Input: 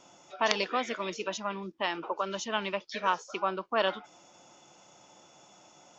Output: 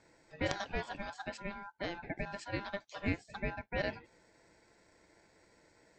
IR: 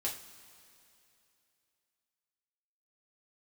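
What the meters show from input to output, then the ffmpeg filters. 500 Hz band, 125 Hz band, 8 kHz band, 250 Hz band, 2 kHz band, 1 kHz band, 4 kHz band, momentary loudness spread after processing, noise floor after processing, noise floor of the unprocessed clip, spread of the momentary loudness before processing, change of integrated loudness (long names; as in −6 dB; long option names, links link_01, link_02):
−8.5 dB, +5.5 dB, can't be measured, −2.0 dB, −6.0 dB, −12.5 dB, −12.0 dB, 6 LU, −68 dBFS, −59 dBFS, 6 LU, −8.0 dB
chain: -af "aeval=exprs='val(0)*sin(2*PI*1200*n/s)':channel_layout=same,tiltshelf=frequency=1100:gain=5,volume=-5.5dB"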